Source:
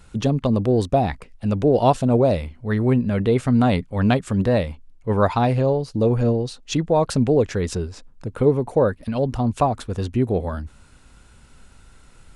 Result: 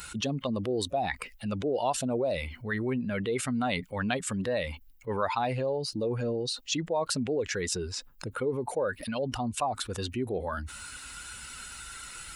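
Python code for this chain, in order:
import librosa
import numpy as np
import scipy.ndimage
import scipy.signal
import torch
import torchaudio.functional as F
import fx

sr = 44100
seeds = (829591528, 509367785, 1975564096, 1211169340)

y = fx.bin_expand(x, sr, power=1.5)
y = fx.highpass(y, sr, hz=800.0, slope=6)
y = fx.env_flatten(y, sr, amount_pct=70)
y = F.gain(torch.from_numpy(y), -7.5).numpy()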